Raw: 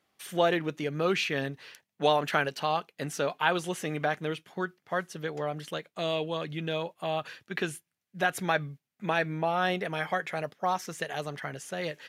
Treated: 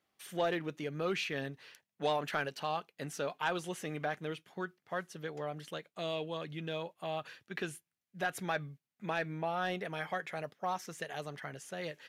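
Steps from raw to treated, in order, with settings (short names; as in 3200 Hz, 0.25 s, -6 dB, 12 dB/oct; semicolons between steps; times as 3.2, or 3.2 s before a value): soft clip -15 dBFS, distortion -21 dB; gain -6.5 dB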